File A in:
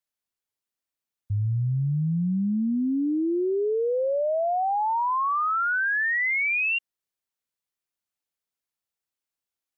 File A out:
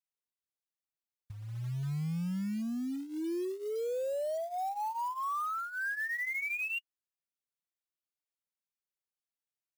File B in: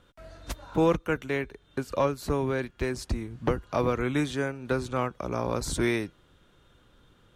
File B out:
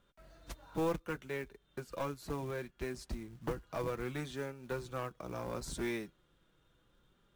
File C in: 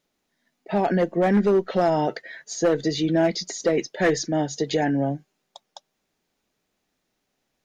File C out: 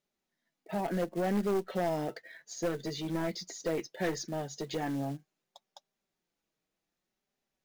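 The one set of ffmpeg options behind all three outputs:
-af "aeval=exprs='clip(val(0),-1,0.1)':c=same,flanger=delay=5:depth=1.3:regen=-39:speed=0.68:shape=sinusoidal,acrusher=bits=5:mode=log:mix=0:aa=0.000001,volume=0.447"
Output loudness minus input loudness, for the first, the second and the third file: -10.5 LU, -11.0 LU, -11.5 LU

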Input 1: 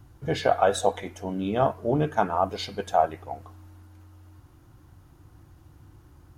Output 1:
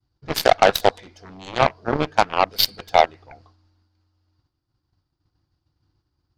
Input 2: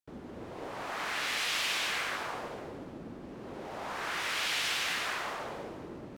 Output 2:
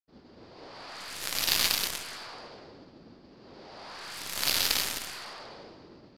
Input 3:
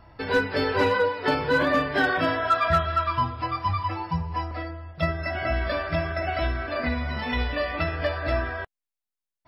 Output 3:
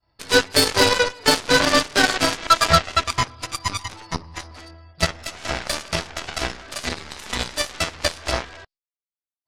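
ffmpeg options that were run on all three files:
-af "lowpass=f=4700:t=q:w=7.6,agate=range=0.0224:threshold=0.00891:ratio=3:detection=peak,aeval=exprs='0.422*(cos(1*acos(clip(val(0)/0.422,-1,1)))-cos(1*PI/2))+0.015*(cos(4*acos(clip(val(0)/0.422,-1,1)))-cos(4*PI/2))+0.0266*(cos(6*acos(clip(val(0)/0.422,-1,1)))-cos(6*PI/2))+0.075*(cos(7*acos(clip(val(0)/0.422,-1,1)))-cos(7*PI/2))+0.00473*(cos(8*acos(clip(val(0)/0.422,-1,1)))-cos(8*PI/2))':c=same,volume=2"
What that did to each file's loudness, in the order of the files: +6.0 LU, +4.5 LU, +5.0 LU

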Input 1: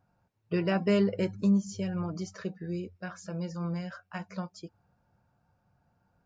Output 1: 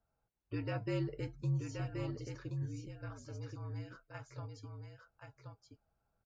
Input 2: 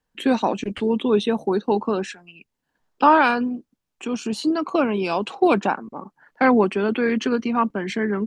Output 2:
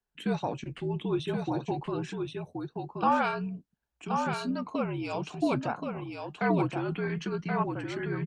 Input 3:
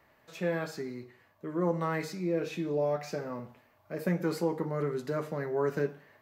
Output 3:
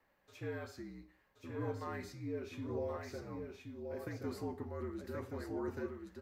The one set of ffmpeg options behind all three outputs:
-af "flanger=delay=2.2:depth=5.9:regen=-72:speed=0.5:shape=triangular,aecho=1:1:1076:0.562,afreqshift=-61,volume=0.473"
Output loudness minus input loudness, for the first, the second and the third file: -10.5 LU, -10.5 LU, -10.5 LU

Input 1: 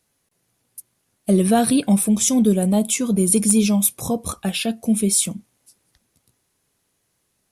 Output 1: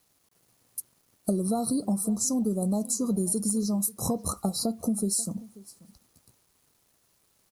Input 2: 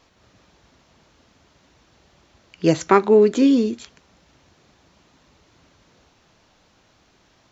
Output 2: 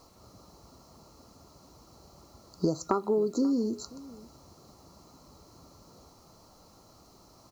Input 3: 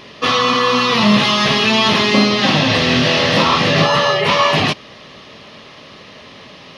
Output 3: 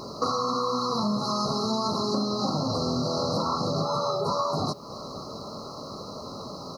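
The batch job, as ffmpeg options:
-filter_complex "[0:a]afftfilt=real='re*(1-between(b*sr/4096,1400,3900))':imag='im*(1-between(b*sr/4096,1400,3900))':win_size=4096:overlap=0.75,acompressor=threshold=0.0447:ratio=8,acrusher=bits=10:mix=0:aa=0.000001,asplit=2[s0][s1];[s1]adelay=536.4,volume=0.1,highshelf=f=4000:g=-12.1[s2];[s0][s2]amix=inputs=2:normalize=0,volume=1.33"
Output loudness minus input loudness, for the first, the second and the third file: -9.5 LU, -12.5 LU, -15.0 LU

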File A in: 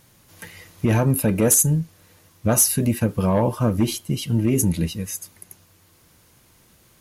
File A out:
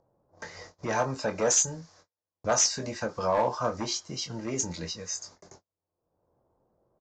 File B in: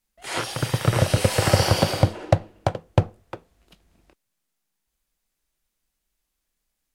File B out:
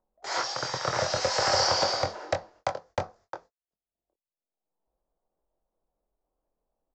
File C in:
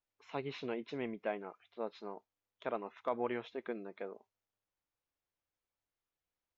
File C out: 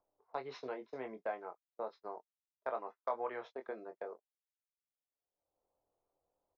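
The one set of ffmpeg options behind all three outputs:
-filter_complex "[0:a]agate=range=0.00501:threshold=0.00562:ratio=16:detection=peak,acrossover=split=550 2600:gain=0.0891 1 0.112[s0][s1][s2];[s0][s1][s2]amix=inputs=3:normalize=0,acrossover=split=680[s3][s4];[s3]acompressor=mode=upward:threshold=0.0126:ratio=2.5[s5];[s5][s4]amix=inputs=2:normalize=0,highshelf=f=3800:t=q:w=3:g=11,aresample=16000,asoftclip=type=hard:threshold=0.106,aresample=44100,asplit=2[s6][s7];[s7]adelay=23,volume=0.447[s8];[s6][s8]amix=inputs=2:normalize=0,volume=1.19"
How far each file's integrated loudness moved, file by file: -8.0 LU, -5.0 LU, -2.0 LU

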